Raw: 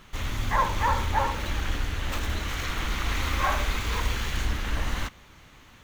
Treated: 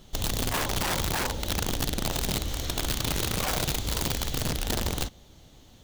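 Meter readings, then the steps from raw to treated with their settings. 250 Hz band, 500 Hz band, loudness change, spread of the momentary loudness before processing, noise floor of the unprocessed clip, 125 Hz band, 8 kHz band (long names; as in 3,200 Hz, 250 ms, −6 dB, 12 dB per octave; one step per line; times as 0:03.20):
+3.5 dB, +2.0 dB, 0.0 dB, 6 LU, −52 dBFS, −1.0 dB, +8.0 dB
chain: flat-topped bell 1,600 Hz −13 dB
speech leveller 2 s
wrap-around overflow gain 22.5 dB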